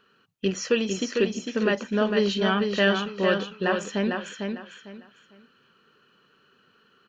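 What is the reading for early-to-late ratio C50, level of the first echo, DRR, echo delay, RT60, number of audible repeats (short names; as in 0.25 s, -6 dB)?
none, -5.0 dB, none, 0.451 s, none, 3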